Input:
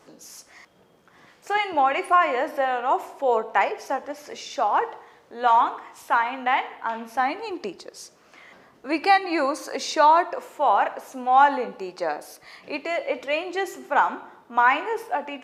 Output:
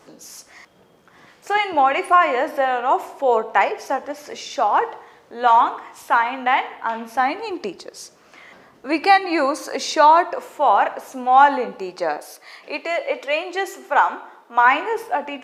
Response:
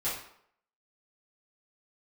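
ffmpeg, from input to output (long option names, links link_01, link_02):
-filter_complex "[0:a]asettb=1/sr,asplit=3[link_01][link_02][link_03];[link_01]atrim=end=12.174[link_04];[link_02]atrim=start=12.17:end=14.65,asetpts=PTS-STARTPTS,afade=type=in:duration=0.004:curve=qsin,afade=type=out:start_time=2.476:duration=0.004:curve=qsin,highpass=370[link_05];[link_03]atrim=start=14.646[link_06];[link_04][link_05]acrossfade=duration=0.004:curve1=hsin:curve2=qsin[link_07];[link_07][link_06]acrossfade=duration=0.004:curve1=qsin:curve2=hsin,volume=4dB"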